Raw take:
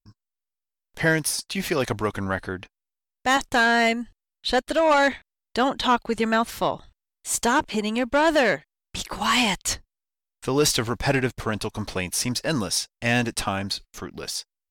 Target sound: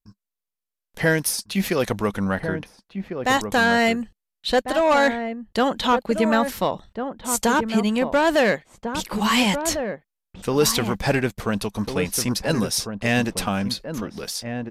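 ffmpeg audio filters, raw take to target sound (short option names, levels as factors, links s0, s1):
-filter_complex "[0:a]aresample=32000,aresample=44100,equalizer=f=200:t=o:w=0.33:g=8,equalizer=f=500:t=o:w=0.33:g=4,equalizer=f=12500:t=o:w=0.33:g=7,asplit=2[s0][s1];[s1]adelay=1399,volume=0.447,highshelf=f=4000:g=-31.5[s2];[s0][s2]amix=inputs=2:normalize=0"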